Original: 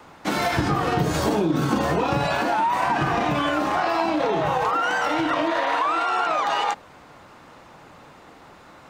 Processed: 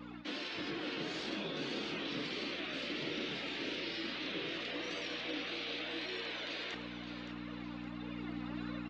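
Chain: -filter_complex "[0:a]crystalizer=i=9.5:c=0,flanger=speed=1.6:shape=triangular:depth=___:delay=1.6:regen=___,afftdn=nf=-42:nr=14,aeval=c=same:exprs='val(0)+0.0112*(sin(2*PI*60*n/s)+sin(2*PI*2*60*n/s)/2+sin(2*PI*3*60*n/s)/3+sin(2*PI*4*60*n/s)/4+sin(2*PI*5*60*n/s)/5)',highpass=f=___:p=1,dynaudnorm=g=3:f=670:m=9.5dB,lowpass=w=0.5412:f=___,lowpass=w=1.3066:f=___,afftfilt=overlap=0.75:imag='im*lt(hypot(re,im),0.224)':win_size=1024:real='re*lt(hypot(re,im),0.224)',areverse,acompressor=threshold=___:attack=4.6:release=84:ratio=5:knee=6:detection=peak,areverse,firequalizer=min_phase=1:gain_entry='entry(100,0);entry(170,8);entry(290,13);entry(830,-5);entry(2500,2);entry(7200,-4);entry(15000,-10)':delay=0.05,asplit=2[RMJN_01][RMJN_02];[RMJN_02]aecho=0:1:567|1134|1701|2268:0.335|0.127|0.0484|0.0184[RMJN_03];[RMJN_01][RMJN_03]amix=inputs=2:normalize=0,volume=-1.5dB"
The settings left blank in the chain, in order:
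2.5, 50, 680, 4k, 4k, -41dB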